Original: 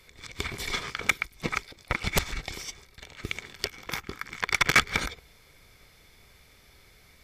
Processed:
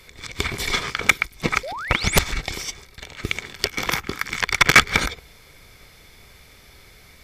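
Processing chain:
0:01.63–0:02.18: sound drawn into the spectrogram rise 480–11,000 Hz −39 dBFS
0:03.77–0:04.58: multiband upward and downward compressor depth 100%
level +8 dB

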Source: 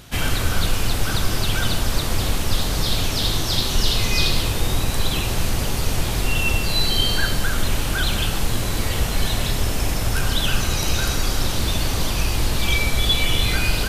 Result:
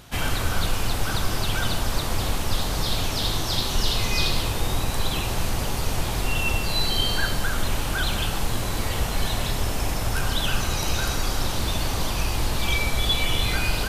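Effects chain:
parametric band 890 Hz +4.5 dB 1.2 octaves
level −4 dB

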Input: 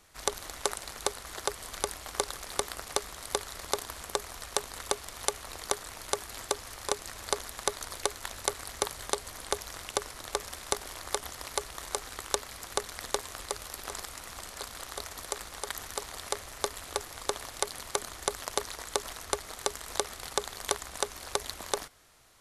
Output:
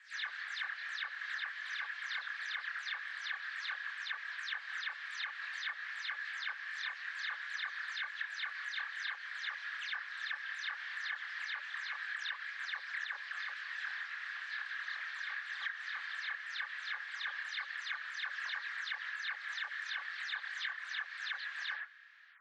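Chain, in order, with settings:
every frequency bin delayed by itself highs early, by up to 173 ms
four-pole ladder high-pass 1,600 Hz, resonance 80%
multi-voice chorus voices 6, 0.64 Hz, delay 26 ms, depth 4.8 ms
low-pass filter 3,800 Hz 24 dB per octave
downward compressor, threshold −49 dBFS, peak gain reduction 8.5 dB
level +13 dB

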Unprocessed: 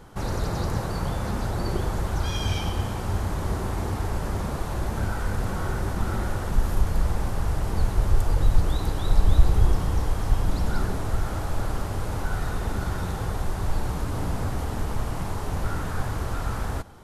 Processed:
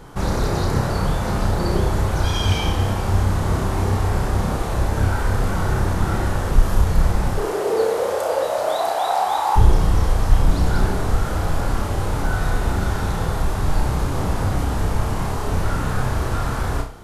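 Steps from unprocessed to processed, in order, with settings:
0:07.37–0:09.55: high-pass with resonance 380 Hz → 880 Hz, resonance Q 7.3
flutter between parallel walls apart 5.4 metres, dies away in 0.37 s
highs frequency-modulated by the lows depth 0.15 ms
level +5.5 dB

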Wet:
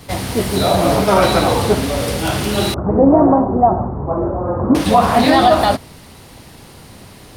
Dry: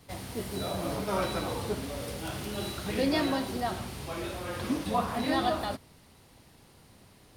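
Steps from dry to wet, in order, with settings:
0:02.74–0:04.75: Butterworth low-pass 1,100 Hz 36 dB per octave
dynamic equaliser 720 Hz, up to +5 dB, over −43 dBFS, Q 3.1
boost into a limiter +18.5 dB
highs frequency-modulated by the lows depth 0.14 ms
level −1 dB

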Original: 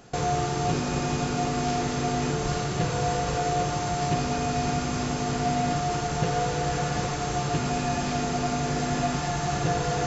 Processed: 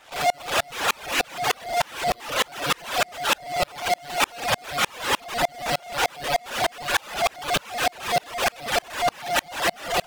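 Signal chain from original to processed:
spectral envelope flattened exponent 0.6
upward compression, threshold −44 dBFS
linear-prediction vocoder at 8 kHz pitch kept
high-pass filter 680 Hz 12 dB per octave
on a send at −13 dB: convolution reverb RT60 1.5 s, pre-delay 6 ms
on the sum: asymmetric clip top −33 dBFS
brickwall limiter −23.5 dBFS, peak gain reduction 5.5 dB
fuzz pedal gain 55 dB, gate −55 dBFS
reverb reduction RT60 1.6 s
tremolo with a ramp in dB swelling 3.3 Hz, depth 35 dB

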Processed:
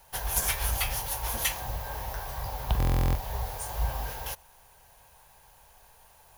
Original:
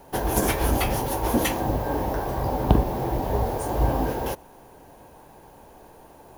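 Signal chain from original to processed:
guitar amp tone stack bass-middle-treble 10-0-10
buffer that repeats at 0:02.78, samples 1,024, times 15
level +1.5 dB

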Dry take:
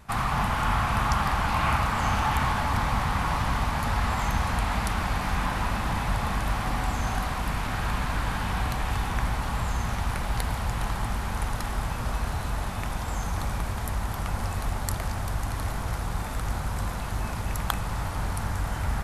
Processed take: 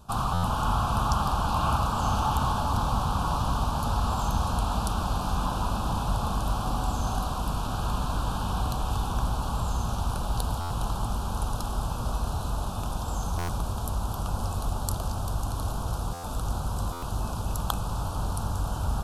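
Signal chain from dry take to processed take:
Butterworth band-reject 2,000 Hz, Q 1.2
buffer that repeats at 0:00.33/0:10.60/0:13.38/0:16.13/0:16.92, samples 512, times 8

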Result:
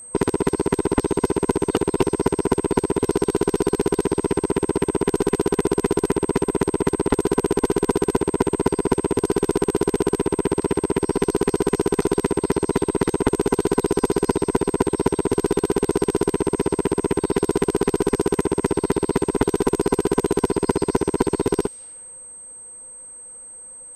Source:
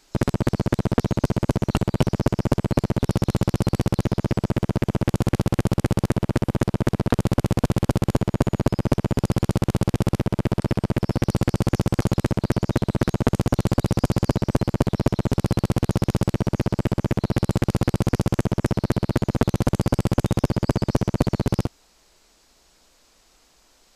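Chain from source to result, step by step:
frequency inversion band by band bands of 500 Hz
in parallel at +1.5 dB: downward compressor, threshold −26 dBFS, peak gain reduction 13 dB
on the sum: low-pass that shuts in the quiet parts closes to 1,300 Hz, open at −18 dBFS
steady tone 8,300 Hz −35 dBFS
level −2 dB

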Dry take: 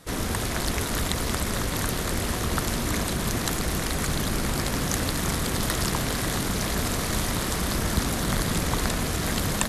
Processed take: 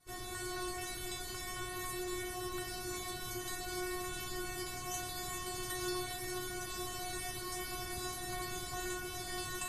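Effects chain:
parametric band 120 Hz +13 dB 0.62 octaves
stiff-string resonator 360 Hz, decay 0.67 s, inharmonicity 0.002
level +6 dB

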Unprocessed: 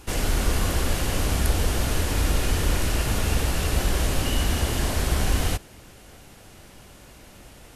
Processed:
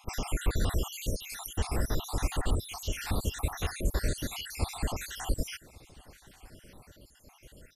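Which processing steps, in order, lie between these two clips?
time-frequency cells dropped at random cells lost 70%
on a send: repeating echo 1,137 ms, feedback 21%, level −23 dB
on the sum: level −4 dB

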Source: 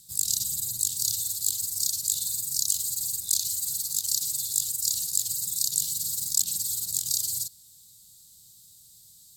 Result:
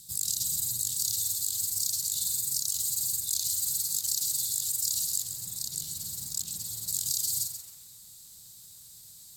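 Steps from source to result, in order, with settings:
0:05.22–0:06.88: high-shelf EQ 2,400 Hz −10 dB
in parallel at −2 dB: downward compressor 16 to 1, threshold −38 dBFS, peak gain reduction 20 dB
on the sum: brickwall limiter −13.5 dBFS, peak gain reduction 7.5 dB
feedback echo at a low word length 134 ms, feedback 35%, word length 8 bits, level −8.5 dB
level −2 dB

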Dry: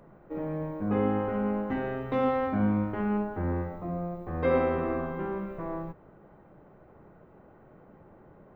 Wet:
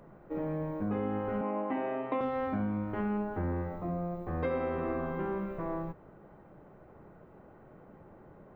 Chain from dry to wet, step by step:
0:01.41–0:02.21: loudspeaker in its box 290–3,100 Hz, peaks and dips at 300 Hz +8 dB, 430 Hz −4 dB, 640 Hz +7 dB, 1,000 Hz +8 dB, 1,500 Hz −7 dB, 2,400 Hz +4 dB
downward compressor 6 to 1, threshold −29 dBFS, peak gain reduction 9 dB

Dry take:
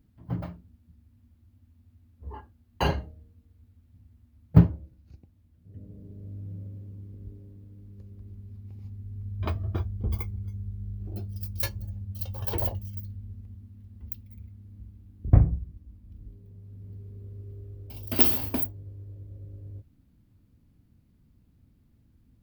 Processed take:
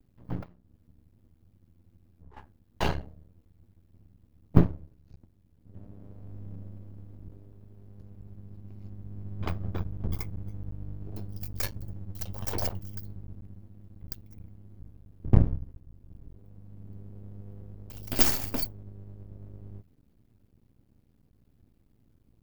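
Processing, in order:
0:00.43–0:02.37: downward compressor 5 to 1, threshold −49 dBFS, peak gain reduction 15 dB
half-wave rectification
level +1.5 dB

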